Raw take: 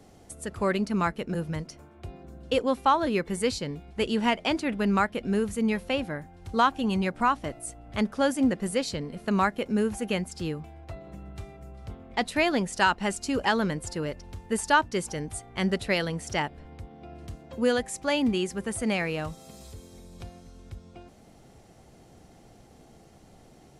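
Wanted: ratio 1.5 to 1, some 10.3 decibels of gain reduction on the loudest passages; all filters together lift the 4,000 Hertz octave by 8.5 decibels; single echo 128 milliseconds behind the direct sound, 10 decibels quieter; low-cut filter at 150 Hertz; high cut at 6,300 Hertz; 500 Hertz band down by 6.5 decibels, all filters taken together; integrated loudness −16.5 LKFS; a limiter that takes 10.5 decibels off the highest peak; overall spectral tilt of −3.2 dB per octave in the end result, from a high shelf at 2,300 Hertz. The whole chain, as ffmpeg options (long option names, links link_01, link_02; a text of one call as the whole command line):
ffmpeg -i in.wav -af "highpass=150,lowpass=6300,equalizer=frequency=500:width_type=o:gain=-8.5,highshelf=frequency=2300:gain=8.5,equalizer=frequency=4000:width_type=o:gain=4.5,acompressor=threshold=-45dB:ratio=1.5,alimiter=level_in=1.5dB:limit=-24dB:level=0:latency=1,volume=-1.5dB,aecho=1:1:128:0.316,volume=21dB" out.wav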